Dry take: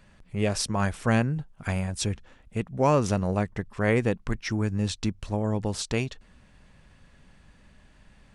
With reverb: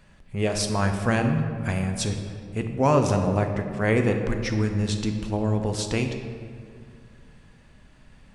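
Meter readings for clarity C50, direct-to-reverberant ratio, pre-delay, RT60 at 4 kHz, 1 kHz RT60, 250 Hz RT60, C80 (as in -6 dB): 6.0 dB, 4.5 dB, 5 ms, 1.2 s, 2.0 s, 2.7 s, 7.5 dB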